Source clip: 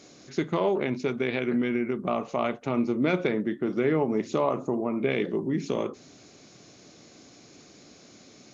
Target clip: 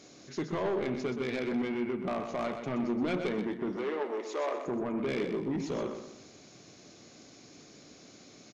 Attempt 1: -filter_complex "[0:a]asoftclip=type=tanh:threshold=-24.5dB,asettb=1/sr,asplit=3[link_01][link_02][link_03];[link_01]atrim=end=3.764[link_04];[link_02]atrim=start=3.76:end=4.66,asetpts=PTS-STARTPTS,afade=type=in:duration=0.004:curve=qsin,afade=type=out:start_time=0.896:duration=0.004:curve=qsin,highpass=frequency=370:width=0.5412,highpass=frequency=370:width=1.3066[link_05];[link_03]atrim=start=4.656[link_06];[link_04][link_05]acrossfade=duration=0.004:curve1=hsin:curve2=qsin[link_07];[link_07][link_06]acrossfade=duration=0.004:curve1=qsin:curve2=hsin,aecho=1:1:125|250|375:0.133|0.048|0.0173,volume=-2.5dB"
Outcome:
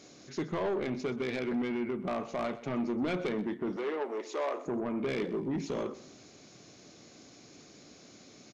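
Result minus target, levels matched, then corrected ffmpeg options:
echo-to-direct −9.5 dB
-filter_complex "[0:a]asoftclip=type=tanh:threshold=-24.5dB,asettb=1/sr,asplit=3[link_01][link_02][link_03];[link_01]atrim=end=3.764[link_04];[link_02]atrim=start=3.76:end=4.66,asetpts=PTS-STARTPTS,afade=type=in:duration=0.004:curve=qsin,afade=type=out:start_time=0.896:duration=0.004:curve=qsin,highpass=frequency=370:width=0.5412,highpass=frequency=370:width=1.3066[link_05];[link_03]atrim=start=4.656[link_06];[link_04][link_05]acrossfade=duration=0.004:curve1=hsin:curve2=qsin[link_07];[link_07][link_06]acrossfade=duration=0.004:curve1=qsin:curve2=hsin,aecho=1:1:125|250|375|500:0.398|0.143|0.0516|0.0186,volume=-2.5dB"

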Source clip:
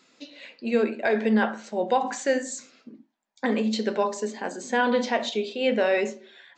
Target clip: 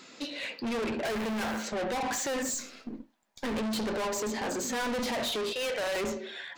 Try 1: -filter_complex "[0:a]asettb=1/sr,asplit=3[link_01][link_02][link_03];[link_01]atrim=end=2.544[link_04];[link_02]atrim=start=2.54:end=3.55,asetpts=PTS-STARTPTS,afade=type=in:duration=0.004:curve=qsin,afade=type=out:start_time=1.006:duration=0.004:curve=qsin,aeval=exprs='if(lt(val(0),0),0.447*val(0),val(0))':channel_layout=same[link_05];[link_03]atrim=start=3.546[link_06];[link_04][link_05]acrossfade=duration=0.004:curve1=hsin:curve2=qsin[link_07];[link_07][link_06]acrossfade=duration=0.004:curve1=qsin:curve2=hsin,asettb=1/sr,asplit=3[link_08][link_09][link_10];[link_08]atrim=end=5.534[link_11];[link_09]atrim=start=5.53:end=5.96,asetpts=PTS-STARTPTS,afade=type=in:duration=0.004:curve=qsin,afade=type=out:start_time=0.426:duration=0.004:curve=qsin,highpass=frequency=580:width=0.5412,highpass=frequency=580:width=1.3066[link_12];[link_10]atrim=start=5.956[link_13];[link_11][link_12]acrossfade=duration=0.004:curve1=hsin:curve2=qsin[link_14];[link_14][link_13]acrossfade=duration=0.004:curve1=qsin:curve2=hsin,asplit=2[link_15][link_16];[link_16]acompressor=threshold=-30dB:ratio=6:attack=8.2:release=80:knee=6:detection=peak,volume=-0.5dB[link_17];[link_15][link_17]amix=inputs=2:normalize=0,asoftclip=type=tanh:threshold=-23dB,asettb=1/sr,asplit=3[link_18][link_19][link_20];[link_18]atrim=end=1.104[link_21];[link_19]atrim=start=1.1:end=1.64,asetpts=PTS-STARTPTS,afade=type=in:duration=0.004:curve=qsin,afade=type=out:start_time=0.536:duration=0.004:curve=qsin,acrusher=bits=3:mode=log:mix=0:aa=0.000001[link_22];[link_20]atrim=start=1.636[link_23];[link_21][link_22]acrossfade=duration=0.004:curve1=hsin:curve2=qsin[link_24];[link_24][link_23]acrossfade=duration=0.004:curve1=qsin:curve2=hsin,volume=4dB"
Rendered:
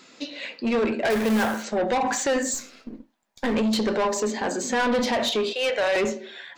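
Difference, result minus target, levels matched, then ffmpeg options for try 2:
soft clipping: distortion −6 dB
-filter_complex "[0:a]asettb=1/sr,asplit=3[link_01][link_02][link_03];[link_01]atrim=end=2.544[link_04];[link_02]atrim=start=2.54:end=3.55,asetpts=PTS-STARTPTS,afade=type=in:duration=0.004:curve=qsin,afade=type=out:start_time=1.006:duration=0.004:curve=qsin,aeval=exprs='if(lt(val(0),0),0.447*val(0),val(0))':channel_layout=same[link_05];[link_03]atrim=start=3.546[link_06];[link_04][link_05]acrossfade=duration=0.004:curve1=hsin:curve2=qsin[link_07];[link_07][link_06]acrossfade=duration=0.004:curve1=qsin:curve2=hsin,asettb=1/sr,asplit=3[link_08][link_09][link_10];[link_08]atrim=end=5.534[link_11];[link_09]atrim=start=5.53:end=5.96,asetpts=PTS-STARTPTS,afade=type=in:duration=0.004:curve=qsin,afade=type=out:start_time=0.426:duration=0.004:curve=qsin,highpass=frequency=580:width=0.5412,highpass=frequency=580:width=1.3066[link_12];[link_10]atrim=start=5.956[link_13];[link_11][link_12]acrossfade=duration=0.004:curve1=hsin:curve2=qsin[link_14];[link_14][link_13]acrossfade=duration=0.004:curve1=qsin:curve2=hsin,asplit=2[link_15][link_16];[link_16]acompressor=threshold=-30dB:ratio=6:attack=8.2:release=80:knee=6:detection=peak,volume=-0.5dB[link_17];[link_15][link_17]amix=inputs=2:normalize=0,asoftclip=type=tanh:threshold=-34dB,asettb=1/sr,asplit=3[link_18][link_19][link_20];[link_18]atrim=end=1.104[link_21];[link_19]atrim=start=1.1:end=1.64,asetpts=PTS-STARTPTS,afade=type=in:duration=0.004:curve=qsin,afade=type=out:start_time=0.536:duration=0.004:curve=qsin,acrusher=bits=3:mode=log:mix=0:aa=0.000001[link_22];[link_20]atrim=start=1.636[link_23];[link_21][link_22]acrossfade=duration=0.004:curve1=hsin:curve2=qsin[link_24];[link_24][link_23]acrossfade=duration=0.004:curve1=qsin:curve2=hsin,volume=4dB"

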